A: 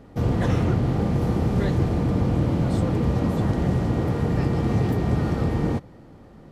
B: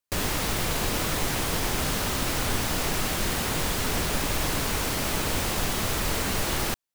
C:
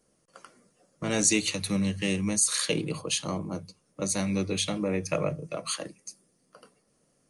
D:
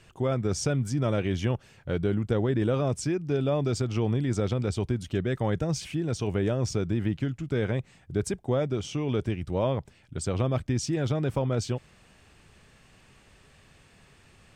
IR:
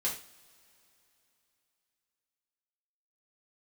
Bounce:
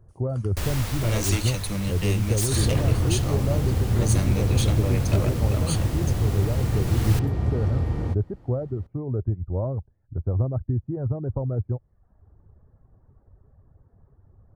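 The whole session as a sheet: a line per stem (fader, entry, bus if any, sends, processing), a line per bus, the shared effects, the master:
-7.0 dB, 2.35 s, no send, none
0.0 dB, 0.45 s, no send, auto duck -12 dB, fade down 1.70 s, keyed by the third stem
-1.5 dB, 0.00 s, no send, gate with hold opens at -57 dBFS; treble shelf 11 kHz +7.5 dB; wavefolder -20.5 dBFS
0.0 dB, 0.00 s, no send, reverb removal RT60 0.7 s; Gaussian low-pass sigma 9 samples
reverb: none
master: resonant low shelf 130 Hz +7.5 dB, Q 1.5

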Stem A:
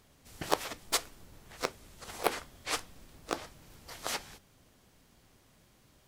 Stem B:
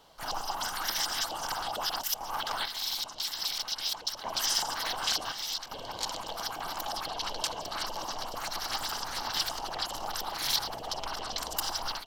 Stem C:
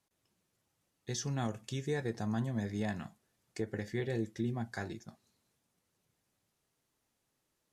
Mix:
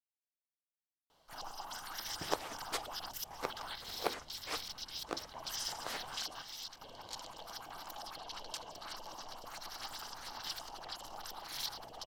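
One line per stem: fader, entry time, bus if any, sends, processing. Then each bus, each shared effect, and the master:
-5.5 dB, 1.80 s, no send, treble shelf 3.9 kHz -8 dB
-11.5 dB, 1.10 s, no send, none
mute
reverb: none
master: none

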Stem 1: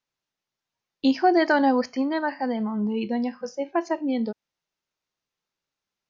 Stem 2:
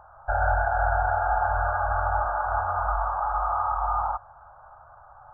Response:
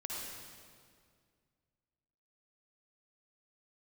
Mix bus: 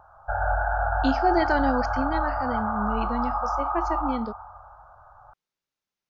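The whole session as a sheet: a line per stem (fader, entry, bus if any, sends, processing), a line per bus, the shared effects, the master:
-4.0 dB, 0.00 s, no send, none
-5.0 dB, 0.00 s, send -4 dB, vibrato 3.2 Hz 23 cents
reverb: on, RT60 2.1 s, pre-delay 49 ms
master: none

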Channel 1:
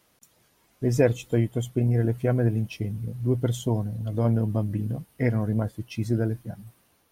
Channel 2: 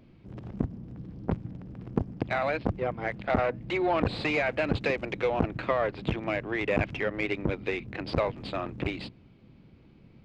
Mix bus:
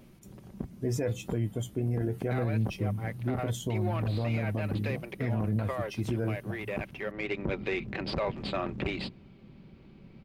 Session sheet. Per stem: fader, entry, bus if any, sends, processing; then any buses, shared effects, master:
+1.0 dB, 0.00 s, no send, high-pass 54 Hz 24 dB/octave; flange 0.75 Hz, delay 9 ms, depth 2.8 ms, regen +57%
+2.5 dB, 0.00 s, no send, comb 5.2 ms, depth 31%; auto duck -11 dB, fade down 0.40 s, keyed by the first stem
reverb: none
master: peak limiter -21 dBFS, peak gain reduction 10 dB

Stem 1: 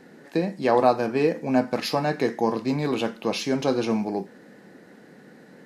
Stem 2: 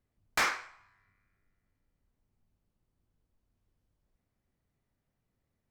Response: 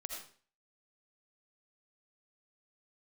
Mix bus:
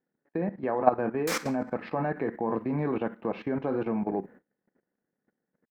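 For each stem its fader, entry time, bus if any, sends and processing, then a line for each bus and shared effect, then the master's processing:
+1.0 dB, 0.00 s, no send, low-pass 1.9 kHz 24 dB/octave
-2.0 dB, 0.90 s, send -13.5 dB, tone controls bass +3 dB, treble +3 dB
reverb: on, RT60 0.45 s, pre-delay 40 ms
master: gate -43 dBFS, range -34 dB; treble shelf 6.2 kHz +11 dB; level held to a coarse grid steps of 14 dB

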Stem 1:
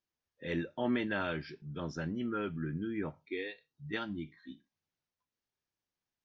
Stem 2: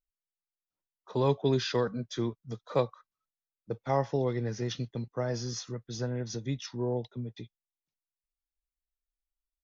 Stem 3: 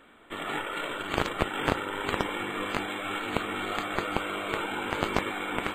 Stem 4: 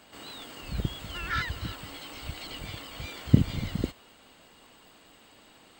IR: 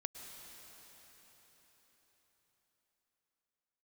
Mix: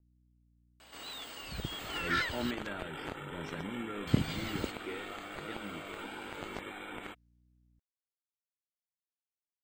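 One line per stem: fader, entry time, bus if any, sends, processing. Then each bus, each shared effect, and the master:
-4.0 dB, 1.55 s, bus A, no send, rotary cabinet horn 0.85 Hz
mute
-11.0 dB, 1.40 s, bus A, no send, none
0.0 dB, 0.80 s, muted 2.51–4.07 s, no bus, no send, bass shelf 360 Hz -11 dB
bus A: 0.0 dB, peaking EQ 1.1 kHz -4 dB 0.28 oct; peak limiter -24.5 dBFS, peak gain reduction 5.5 dB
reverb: none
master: hum 60 Hz, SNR 29 dB; vibrato 1.5 Hz 28 cents

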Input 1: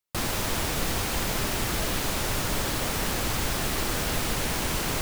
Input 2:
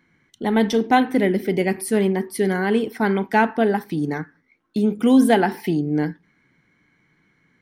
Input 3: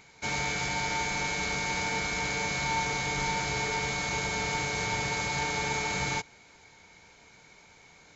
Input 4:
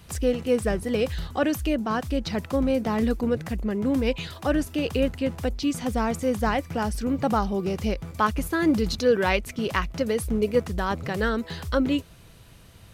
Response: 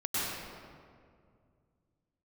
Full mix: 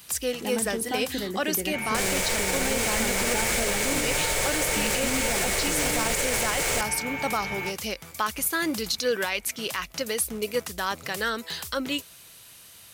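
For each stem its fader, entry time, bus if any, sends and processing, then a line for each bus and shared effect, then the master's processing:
-1.5 dB, 1.80 s, no send, graphic EQ 125/250/500/1000/2000/8000 Hz -4/-11/+12/-4/+7/+11 dB
-9.0 dB, 0.00 s, no send, compression, threshold -19 dBFS, peak gain reduction 9 dB
-4.5 dB, 1.50 s, no send, resonant high shelf 3.4 kHz -8.5 dB, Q 3
-1.0 dB, 0.00 s, no send, tilt EQ +4 dB/octave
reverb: none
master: peak limiter -15 dBFS, peak gain reduction 10 dB

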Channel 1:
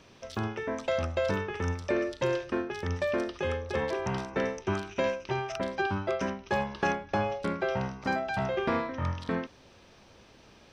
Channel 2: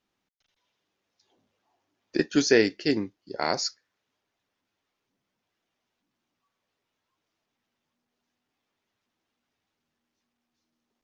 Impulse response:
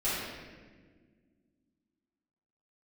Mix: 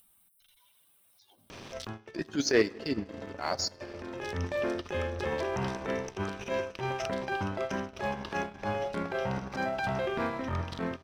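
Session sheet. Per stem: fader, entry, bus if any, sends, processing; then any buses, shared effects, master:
+2.5 dB, 1.50 s, no send, echo send -14 dB, compression, threshold -33 dBFS, peak gain reduction 10 dB; auto duck -20 dB, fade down 0.35 s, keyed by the second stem
-3.0 dB, 0.00 s, send -24 dB, no echo send, expander on every frequency bin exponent 1.5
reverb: on, RT60 1.6 s, pre-delay 3 ms
echo: feedback delay 419 ms, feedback 56%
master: transient shaper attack -12 dB, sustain -8 dB; waveshaping leveller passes 1; upward compressor, threshold -35 dBFS

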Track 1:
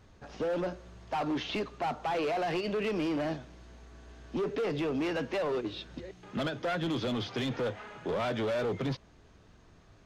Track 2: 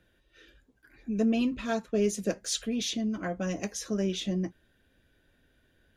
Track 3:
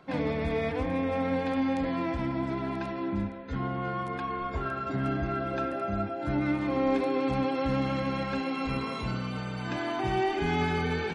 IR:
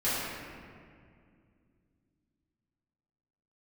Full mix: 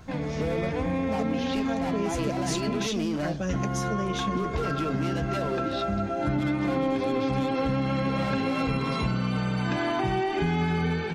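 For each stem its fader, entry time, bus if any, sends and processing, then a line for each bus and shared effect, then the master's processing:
+1.5 dB, 0.00 s, no send, vibrato 1.4 Hz 45 cents; tone controls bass +9 dB, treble +11 dB
+2.5 dB, 0.00 s, no send, none
+2.0 dB, 0.00 s, muted 2.87–3.49 s, no send, peaking EQ 160 Hz +8 dB 0.45 oct; level rider gain up to 11 dB; auto duck -8 dB, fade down 0.25 s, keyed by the second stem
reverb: none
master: compression 6:1, threshold -24 dBFS, peak gain reduction 14.5 dB

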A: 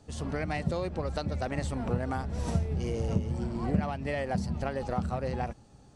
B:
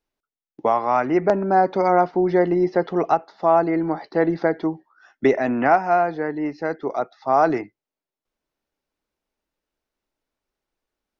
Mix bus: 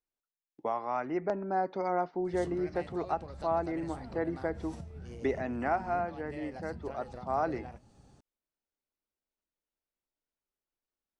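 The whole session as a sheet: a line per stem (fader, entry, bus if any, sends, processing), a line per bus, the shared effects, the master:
+0.5 dB, 2.25 s, no send, compression 6:1, threshold -38 dBFS, peak gain reduction 16 dB; flange 0.89 Hz, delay 9.3 ms, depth 8.7 ms, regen -73%
-13.5 dB, 0.00 s, no send, none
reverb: none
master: none

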